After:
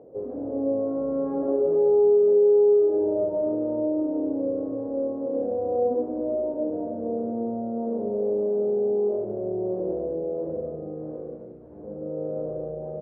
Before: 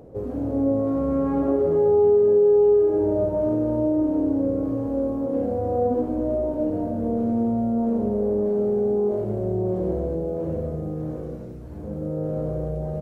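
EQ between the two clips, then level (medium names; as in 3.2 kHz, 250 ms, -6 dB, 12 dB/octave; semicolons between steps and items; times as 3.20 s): band-pass filter 490 Hz, Q 1.3; distance through air 160 m; 0.0 dB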